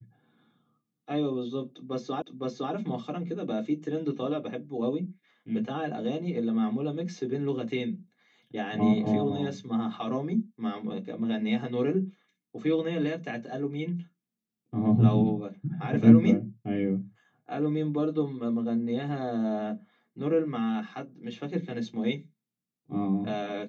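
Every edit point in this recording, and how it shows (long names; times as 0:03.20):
0:02.22: the same again, the last 0.51 s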